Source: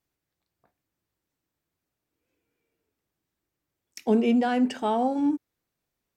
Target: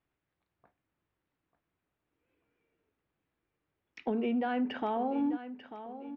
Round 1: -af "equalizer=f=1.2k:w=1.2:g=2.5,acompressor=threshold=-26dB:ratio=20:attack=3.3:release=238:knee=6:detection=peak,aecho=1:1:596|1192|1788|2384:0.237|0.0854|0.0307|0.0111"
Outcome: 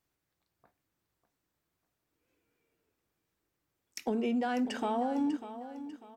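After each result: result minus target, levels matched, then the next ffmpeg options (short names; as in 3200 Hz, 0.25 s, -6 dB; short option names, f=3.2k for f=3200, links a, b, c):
echo 0.296 s early; 4000 Hz band +3.0 dB
-af "equalizer=f=1.2k:w=1.2:g=2.5,acompressor=threshold=-26dB:ratio=20:attack=3.3:release=238:knee=6:detection=peak,aecho=1:1:892|1784|2676|3568:0.237|0.0854|0.0307|0.0111"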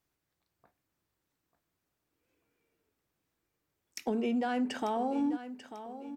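4000 Hz band +3.0 dB
-af "equalizer=f=1.2k:w=1.2:g=2.5,acompressor=threshold=-26dB:ratio=20:attack=3.3:release=238:knee=6:detection=peak,lowpass=f=3.2k:w=0.5412,lowpass=f=3.2k:w=1.3066,aecho=1:1:892|1784|2676|3568:0.237|0.0854|0.0307|0.0111"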